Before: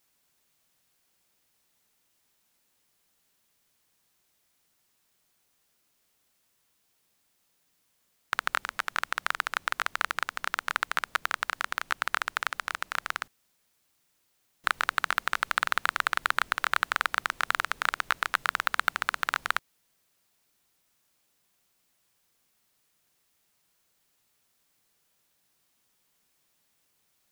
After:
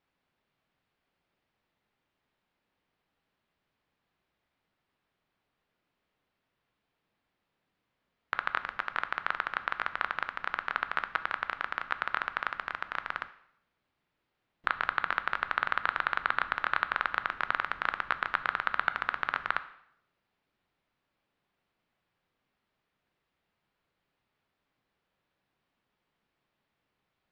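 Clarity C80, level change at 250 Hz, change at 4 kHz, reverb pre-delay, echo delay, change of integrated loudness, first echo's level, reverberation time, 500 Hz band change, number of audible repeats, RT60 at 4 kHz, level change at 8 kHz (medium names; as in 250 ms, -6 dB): 17.5 dB, 0.0 dB, -8.5 dB, 6 ms, no echo, -2.5 dB, no echo, 0.70 s, -1.0 dB, no echo, 0.65 s, under -25 dB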